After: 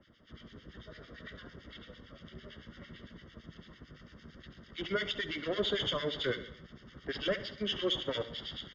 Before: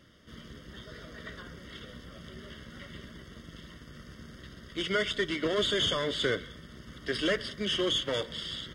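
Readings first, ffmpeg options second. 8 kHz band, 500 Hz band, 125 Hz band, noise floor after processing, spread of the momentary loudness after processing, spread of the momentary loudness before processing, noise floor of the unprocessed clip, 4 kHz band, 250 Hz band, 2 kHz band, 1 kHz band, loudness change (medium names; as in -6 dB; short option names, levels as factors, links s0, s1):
-13.5 dB, -4.0 dB, -4.0 dB, -60 dBFS, 21 LU, 20 LU, -51 dBFS, -5.0 dB, -5.0 dB, -5.5 dB, -5.0 dB, -5.0 dB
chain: -filter_complex "[0:a]acrossover=split=190|920|5600[s0][s1][s2][s3];[s3]acrusher=samples=29:mix=1:aa=0.000001[s4];[s0][s1][s2][s4]amix=inputs=4:normalize=0,aresample=16000,aresample=44100,acrossover=split=1500[s5][s6];[s5]aeval=exprs='val(0)*(1-1/2+1/2*cos(2*PI*8.9*n/s))':c=same[s7];[s6]aeval=exprs='val(0)*(1-1/2-1/2*cos(2*PI*8.9*n/s))':c=same[s8];[s7][s8]amix=inputs=2:normalize=0,aecho=1:1:69|138|207|276|345:0.178|0.096|0.0519|0.028|0.0151"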